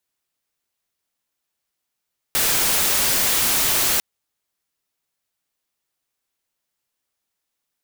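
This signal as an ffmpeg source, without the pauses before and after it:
-f lavfi -i "anoisesrc=c=white:a=0.194:d=1.65:r=44100:seed=1"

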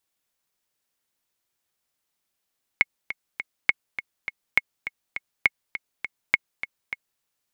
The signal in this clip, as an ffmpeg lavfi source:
-f lavfi -i "aevalsrc='pow(10,(-3.5-12.5*gte(mod(t,3*60/204),60/204))/20)*sin(2*PI*2180*mod(t,60/204))*exp(-6.91*mod(t,60/204)/0.03)':d=4.41:s=44100"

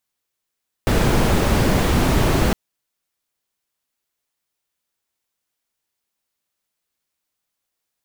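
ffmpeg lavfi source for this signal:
-f lavfi -i "anoisesrc=c=brown:a=0.741:d=1.66:r=44100:seed=1"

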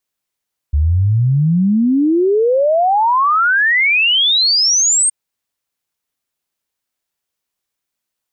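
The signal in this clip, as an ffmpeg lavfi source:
-f lavfi -i "aevalsrc='0.316*clip(min(t,4.37-t)/0.01,0,1)*sin(2*PI*70*4.37/log(8700/70)*(exp(log(8700/70)*t/4.37)-1))':d=4.37:s=44100"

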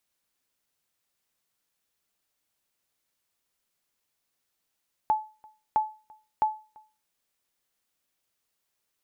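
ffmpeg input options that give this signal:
-f lavfi -i "aevalsrc='0.158*(sin(2*PI*863*mod(t,0.66))*exp(-6.91*mod(t,0.66)/0.33)+0.0422*sin(2*PI*863*max(mod(t,0.66)-0.34,0))*exp(-6.91*max(mod(t,0.66)-0.34,0)/0.33))':d=1.98:s=44100"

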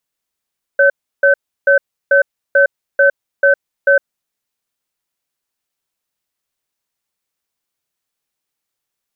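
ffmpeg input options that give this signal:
-f lavfi -i "aevalsrc='0.335*(sin(2*PI*559*t)+sin(2*PI*1530*t))*clip(min(mod(t,0.44),0.11-mod(t,0.44))/0.005,0,1)':d=3.25:s=44100"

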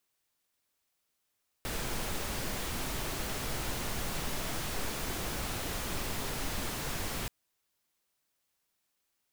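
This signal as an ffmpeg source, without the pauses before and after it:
-f lavfi -i "anoisesrc=c=pink:a=0.0912:d=5.63:r=44100:seed=1"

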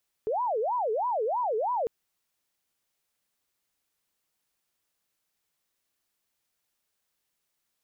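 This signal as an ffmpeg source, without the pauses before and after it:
-f lavfi -i "aevalsrc='0.0562*sin(2*PI*(711.5*t-287.5/(2*PI*3.1)*sin(2*PI*3.1*t)))':d=1.6:s=44100"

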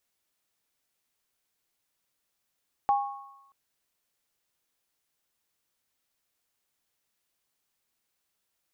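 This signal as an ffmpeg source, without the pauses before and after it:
-f lavfi -i "aevalsrc='0.119*pow(10,-3*t/0.69)*sin(2*PI*811*t)+0.0398*pow(10,-3*t/1.17)*sin(2*PI*1100*t)':d=0.63:s=44100"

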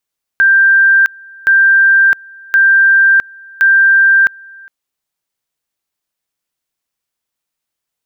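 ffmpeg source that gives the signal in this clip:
-f lavfi -i "aevalsrc='pow(10,(-5-27.5*gte(mod(t,1.07),0.66))/20)*sin(2*PI*1580*t)':d=4.28:s=44100"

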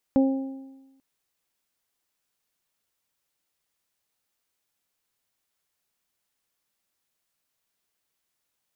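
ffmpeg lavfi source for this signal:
-f lavfi -i "aevalsrc='0.178*pow(10,-3*t/1.13)*sin(2*PI*268*t)+0.0794*pow(10,-3*t/0.85)*sin(2*PI*536*t)+0.0251*pow(10,-3*t/1)*sin(2*PI*804*t)':d=0.84:s=44100"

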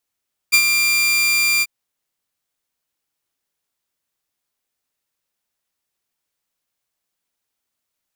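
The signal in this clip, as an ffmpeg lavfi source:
-f lavfi -i "aevalsrc='0.501*(2*mod(2380*t,1)-1)':d=1.139:s=44100,afade=t=in:d=0.022,afade=t=out:st=0.022:d=0.071:silence=0.501,afade=t=out:st=1.1:d=0.039"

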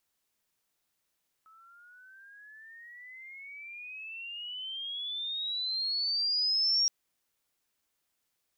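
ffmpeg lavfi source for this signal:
-f lavfi -i "aevalsrc='pow(10,(-23+32*(t/5.42-1))/20)*sin(2*PI*1290*5.42/(25.5*log(2)/12)*(exp(25.5*log(2)/12*t/5.42)-1))':d=5.42:s=44100"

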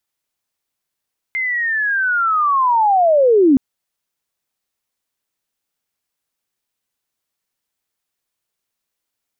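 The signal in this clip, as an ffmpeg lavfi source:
-f lavfi -i "aevalsrc='pow(10,(-17.5+10*t/2.22)/20)*sin(2*PI*(2100*t-1850*t*t/(2*2.22)))':d=2.22:s=44100"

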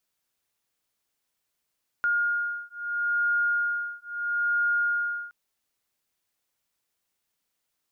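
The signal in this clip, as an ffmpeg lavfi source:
-f lavfi -i "aevalsrc='0.0447*(sin(2*PI*1420*t)+sin(2*PI*1420.76*t))':d=3.27:s=44100"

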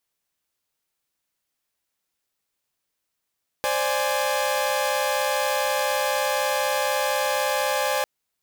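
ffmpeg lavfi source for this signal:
-f lavfi -i "aevalsrc='0.0668*((2*mod(523.25*t,1)-1)+(2*mod(587.33*t,1)-1)+(2*mod(830.61*t,1)-1))':d=4.4:s=44100"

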